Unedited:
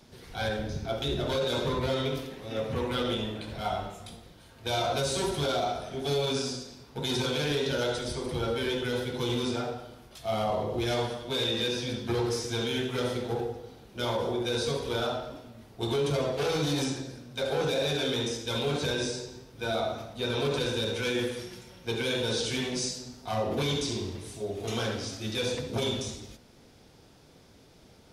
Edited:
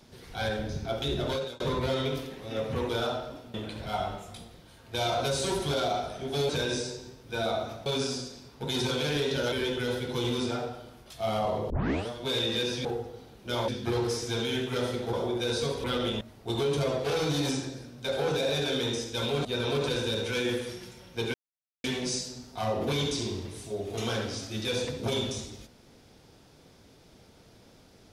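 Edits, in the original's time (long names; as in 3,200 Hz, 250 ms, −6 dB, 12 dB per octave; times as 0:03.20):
0:01.29–0:01.60: fade out
0:02.89–0:03.26: swap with 0:14.89–0:15.54
0:07.87–0:08.57: remove
0:10.75: tape start 0.38 s
0:13.35–0:14.18: move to 0:11.90
0:18.78–0:20.15: move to 0:06.21
0:22.04–0:22.54: silence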